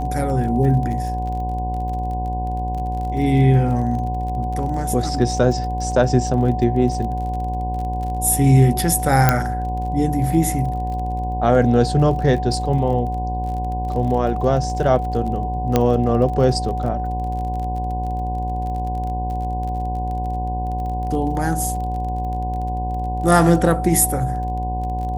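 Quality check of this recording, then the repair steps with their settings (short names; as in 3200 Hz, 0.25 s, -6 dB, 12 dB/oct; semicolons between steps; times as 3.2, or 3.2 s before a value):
buzz 60 Hz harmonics 17 -25 dBFS
crackle 31/s -29 dBFS
tone 740 Hz -25 dBFS
9.29 pop 0 dBFS
15.76 pop -3 dBFS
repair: de-click; notch 740 Hz, Q 30; de-hum 60 Hz, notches 17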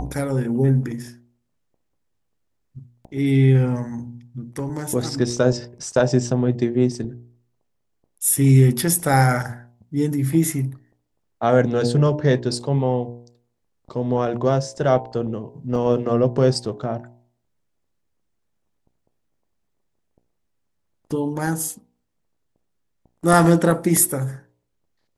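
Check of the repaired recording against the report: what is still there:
15.76 pop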